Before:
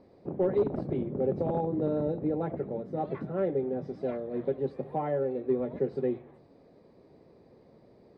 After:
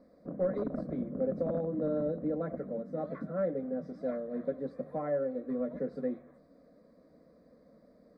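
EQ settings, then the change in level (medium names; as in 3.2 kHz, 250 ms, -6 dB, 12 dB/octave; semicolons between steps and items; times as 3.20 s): static phaser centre 570 Hz, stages 8; 0.0 dB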